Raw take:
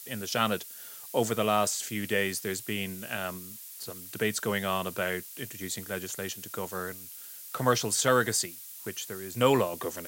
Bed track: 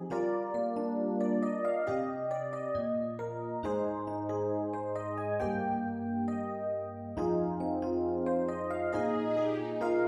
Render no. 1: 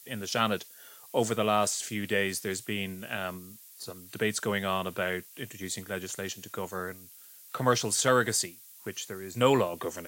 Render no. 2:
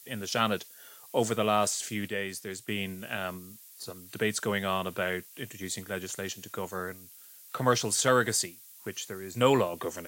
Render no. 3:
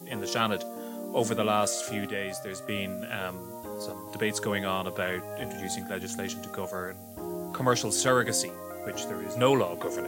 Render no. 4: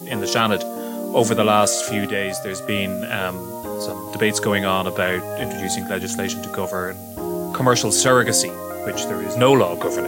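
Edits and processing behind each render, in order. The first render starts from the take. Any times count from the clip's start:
noise print and reduce 7 dB
2.08–2.68 s: gain -5.5 dB
add bed track -6 dB
trim +10 dB; peak limiter -3 dBFS, peak gain reduction 3 dB

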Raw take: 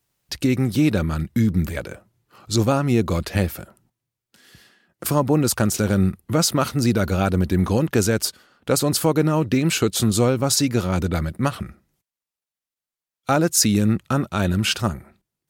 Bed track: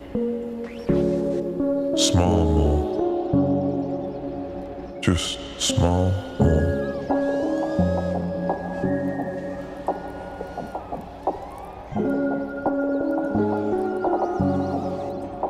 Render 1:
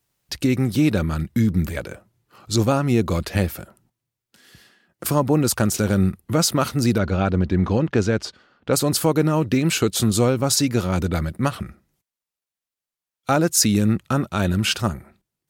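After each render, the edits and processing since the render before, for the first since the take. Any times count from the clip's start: 6.98–8.73 s: distance through air 140 m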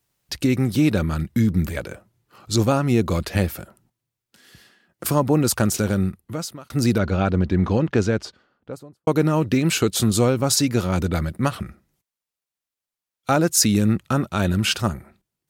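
5.73–6.70 s: fade out; 7.95–9.07 s: studio fade out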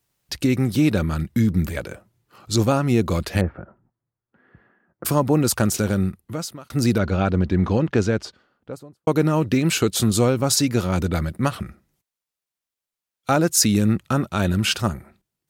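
3.41–5.05 s: low-pass 1.6 kHz 24 dB/octave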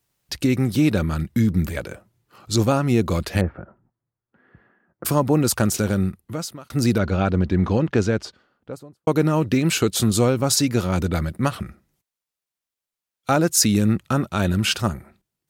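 no audible change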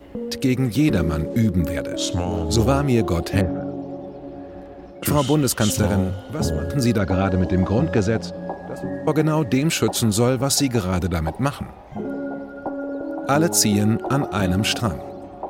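add bed track -5 dB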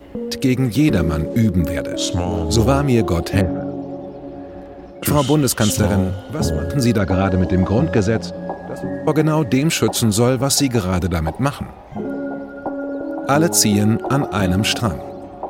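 trim +3 dB

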